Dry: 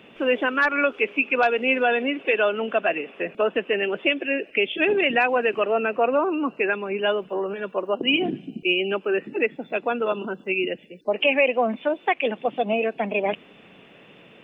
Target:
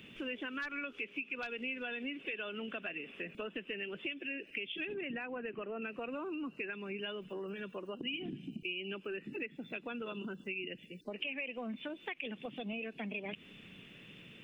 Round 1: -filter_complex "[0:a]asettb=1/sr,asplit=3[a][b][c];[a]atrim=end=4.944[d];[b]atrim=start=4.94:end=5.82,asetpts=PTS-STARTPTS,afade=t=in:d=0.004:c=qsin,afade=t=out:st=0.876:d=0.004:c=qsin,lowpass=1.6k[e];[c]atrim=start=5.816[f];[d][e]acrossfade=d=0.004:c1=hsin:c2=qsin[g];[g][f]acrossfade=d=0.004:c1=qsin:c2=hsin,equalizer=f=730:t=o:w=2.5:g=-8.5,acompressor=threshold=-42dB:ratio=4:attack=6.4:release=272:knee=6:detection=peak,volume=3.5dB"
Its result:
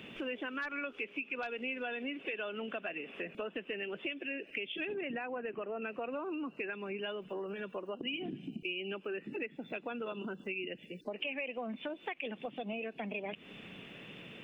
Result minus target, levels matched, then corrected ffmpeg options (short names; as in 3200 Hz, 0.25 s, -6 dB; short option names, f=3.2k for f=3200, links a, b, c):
1000 Hz band +3.0 dB
-filter_complex "[0:a]asettb=1/sr,asplit=3[a][b][c];[a]atrim=end=4.944[d];[b]atrim=start=4.94:end=5.82,asetpts=PTS-STARTPTS,afade=t=in:d=0.004:c=qsin,afade=t=out:st=0.876:d=0.004:c=qsin,lowpass=1.6k[e];[c]atrim=start=5.816[f];[d][e]acrossfade=d=0.004:c1=hsin:c2=qsin[g];[g][f]acrossfade=d=0.004:c1=qsin:c2=hsin,equalizer=f=730:t=o:w=2.5:g=-20,acompressor=threshold=-42dB:ratio=4:attack=6.4:release=272:knee=6:detection=peak,volume=3.5dB"